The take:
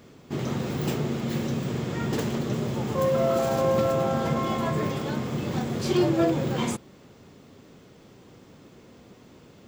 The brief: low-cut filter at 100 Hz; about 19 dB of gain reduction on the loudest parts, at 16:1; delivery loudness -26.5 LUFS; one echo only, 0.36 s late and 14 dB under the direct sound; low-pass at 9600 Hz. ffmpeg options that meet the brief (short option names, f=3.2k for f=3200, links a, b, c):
-af "highpass=100,lowpass=9.6k,acompressor=threshold=-38dB:ratio=16,aecho=1:1:360:0.2,volume=17dB"